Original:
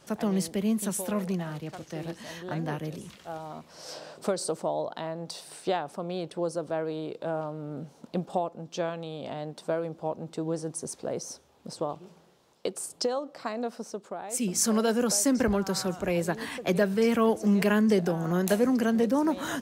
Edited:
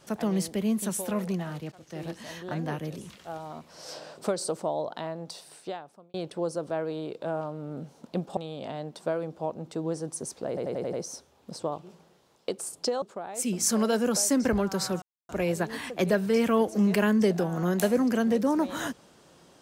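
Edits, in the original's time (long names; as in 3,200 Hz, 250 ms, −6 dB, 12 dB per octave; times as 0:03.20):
0:01.72–0:02.04: fade in, from −17.5 dB
0:05.06–0:06.14: fade out
0:08.37–0:08.99: remove
0:11.10: stutter 0.09 s, 6 plays
0:13.19–0:13.97: remove
0:15.97: splice in silence 0.27 s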